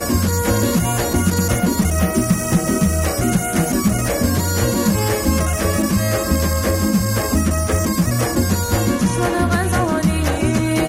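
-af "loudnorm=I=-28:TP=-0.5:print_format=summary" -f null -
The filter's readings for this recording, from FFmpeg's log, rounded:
Input Integrated:    -17.8 LUFS
Input True Peak:      -3.1 dBTP
Input LRA:             0.5 LU
Input Threshold:     -27.8 LUFS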